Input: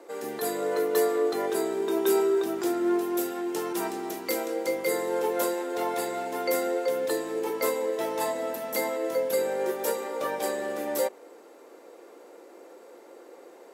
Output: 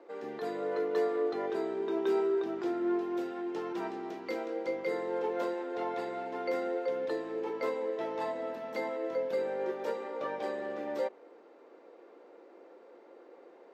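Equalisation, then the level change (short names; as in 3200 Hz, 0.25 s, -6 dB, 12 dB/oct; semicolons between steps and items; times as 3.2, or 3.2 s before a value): air absorption 220 m; -5.0 dB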